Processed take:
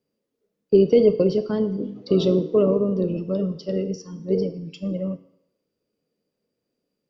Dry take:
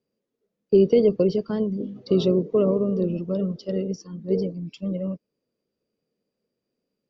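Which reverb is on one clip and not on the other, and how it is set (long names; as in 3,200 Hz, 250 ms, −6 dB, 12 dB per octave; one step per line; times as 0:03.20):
feedback delay network reverb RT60 0.83 s, low-frequency decay 0.75×, high-frequency decay 0.95×, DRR 9.5 dB
level +1.5 dB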